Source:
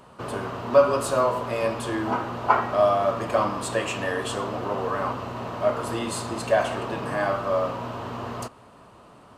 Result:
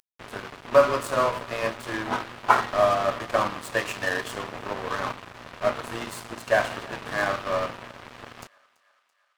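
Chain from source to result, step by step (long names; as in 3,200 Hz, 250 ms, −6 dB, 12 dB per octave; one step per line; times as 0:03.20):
parametric band 1,800 Hz +8 dB 0.88 octaves
upward compression, threshold −39 dBFS
dead-zone distortion −29 dBFS
feedback echo with a high-pass in the loop 334 ms, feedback 64%, high-pass 630 Hz, level −23.5 dB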